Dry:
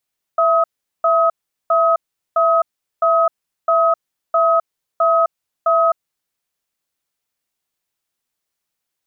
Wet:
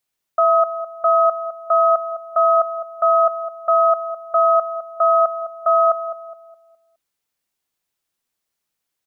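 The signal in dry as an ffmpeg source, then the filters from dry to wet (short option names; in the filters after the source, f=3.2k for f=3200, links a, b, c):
-f lavfi -i "aevalsrc='0.2*(sin(2*PI*664*t)+sin(2*PI*1270*t))*clip(min(mod(t,0.66),0.26-mod(t,0.66))/0.005,0,1)':d=5.87:s=44100"
-filter_complex "[0:a]asplit=2[a][b];[b]adelay=208,lowpass=f=910:p=1,volume=-9dB,asplit=2[c][d];[d]adelay=208,lowpass=f=910:p=1,volume=0.47,asplit=2[e][f];[f]adelay=208,lowpass=f=910:p=1,volume=0.47,asplit=2[g][h];[h]adelay=208,lowpass=f=910:p=1,volume=0.47,asplit=2[i][j];[j]adelay=208,lowpass=f=910:p=1,volume=0.47[k];[a][c][e][g][i][k]amix=inputs=6:normalize=0"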